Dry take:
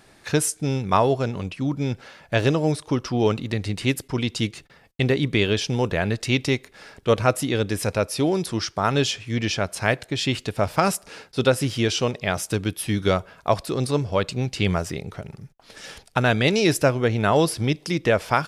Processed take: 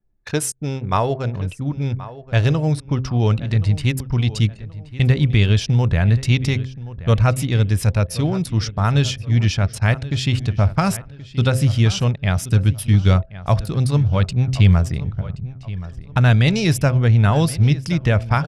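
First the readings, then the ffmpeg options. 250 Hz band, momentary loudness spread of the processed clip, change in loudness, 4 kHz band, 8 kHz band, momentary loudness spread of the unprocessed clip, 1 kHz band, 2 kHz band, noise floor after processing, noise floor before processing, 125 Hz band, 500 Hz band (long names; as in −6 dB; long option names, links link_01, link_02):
+2.5 dB, 10 LU, +4.5 dB, 0.0 dB, 0.0 dB, 8 LU, −1.0 dB, −0.5 dB, −40 dBFS, −55 dBFS, +11.0 dB, −3.5 dB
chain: -filter_complex "[0:a]asubboost=boost=9:cutoff=120,bandreject=frequency=130.8:width_type=h:width=4,bandreject=frequency=261.6:width_type=h:width=4,bandreject=frequency=392.4:width_type=h:width=4,bandreject=frequency=523.2:width_type=h:width=4,bandreject=frequency=654:width_type=h:width=4,anlmdn=10,asplit=2[link_01][link_02];[link_02]adelay=1076,lowpass=frequency=3300:poles=1,volume=-16dB,asplit=2[link_03][link_04];[link_04]adelay=1076,lowpass=frequency=3300:poles=1,volume=0.34,asplit=2[link_05][link_06];[link_06]adelay=1076,lowpass=frequency=3300:poles=1,volume=0.34[link_07];[link_01][link_03][link_05][link_07]amix=inputs=4:normalize=0"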